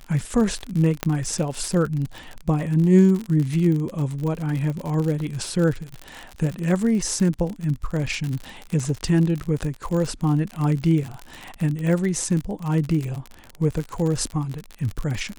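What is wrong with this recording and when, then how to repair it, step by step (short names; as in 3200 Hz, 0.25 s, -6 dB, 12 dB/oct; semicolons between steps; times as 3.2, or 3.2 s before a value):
crackle 55/s -26 dBFS
1.03 pop -8 dBFS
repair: de-click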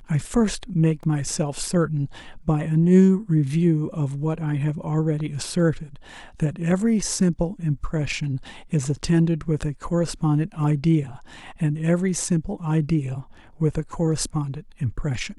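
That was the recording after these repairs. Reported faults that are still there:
1.03 pop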